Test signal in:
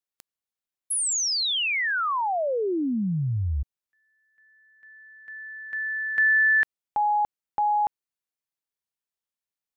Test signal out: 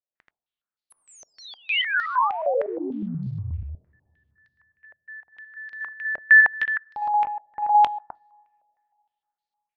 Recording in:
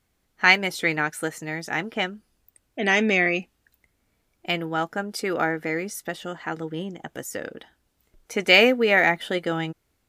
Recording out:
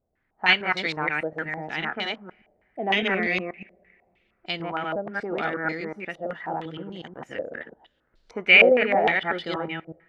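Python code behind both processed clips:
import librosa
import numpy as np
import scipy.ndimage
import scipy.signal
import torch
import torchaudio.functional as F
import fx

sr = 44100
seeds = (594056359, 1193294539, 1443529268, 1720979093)

p1 = fx.reverse_delay(x, sr, ms=121, wet_db=0.0)
p2 = 10.0 ** (-7.0 / 20.0) * np.tanh(p1 / 10.0 ** (-7.0 / 20.0))
p3 = p1 + F.gain(torch.from_numpy(p2), -3.5).numpy()
p4 = fx.quant_float(p3, sr, bits=6)
p5 = fx.rev_double_slope(p4, sr, seeds[0], early_s=0.26, late_s=2.8, knee_db=-21, drr_db=19.0)
p6 = fx.filter_held_lowpass(p5, sr, hz=6.5, low_hz=610.0, high_hz=4300.0)
y = F.gain(torch.from_numpy(p6), -12.0).numpy()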